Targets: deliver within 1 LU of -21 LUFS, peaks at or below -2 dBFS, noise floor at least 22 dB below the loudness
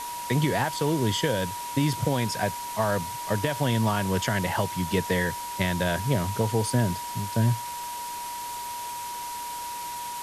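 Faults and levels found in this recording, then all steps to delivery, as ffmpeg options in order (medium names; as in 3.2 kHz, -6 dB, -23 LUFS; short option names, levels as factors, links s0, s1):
steady tone 960 Hz; tone level -33 dBFS; noise floor -35 dBFS; noise floor target -50 dBFS; loudness -27.5 LUFS; peak level -11.5 dBFS; loudness target -21.0 LUFS
-> -af "bandreject=f=960:w=30"
-af "afftdn=nr=15:nf=-35"
-af "volume=2.11"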